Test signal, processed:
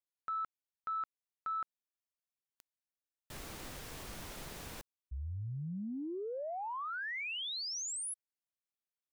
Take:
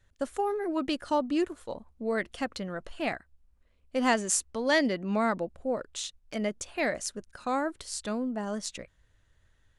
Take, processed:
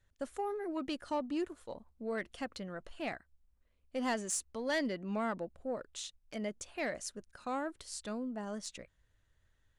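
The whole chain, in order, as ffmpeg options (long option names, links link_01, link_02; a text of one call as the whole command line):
ffmpeg -i in.wav -af "asoftclip=type=tanh:threshold=-18.5dB,volume=-7dB" out.wav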